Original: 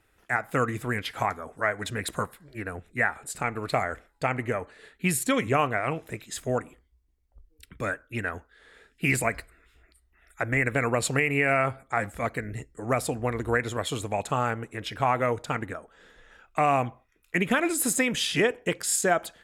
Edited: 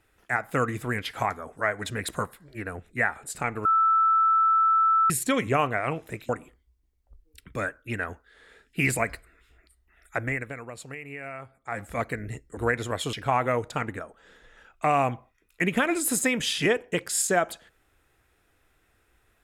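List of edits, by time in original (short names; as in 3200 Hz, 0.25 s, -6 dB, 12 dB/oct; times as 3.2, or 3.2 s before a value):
3.65–5.1 bleep 1320 Hz -17.5 dBFS
6.29–6.54 cut
10.43–12.17 dip -15 dB, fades 0.50 s quadratic
12.82–13.43 cut
13.99–14.87 cut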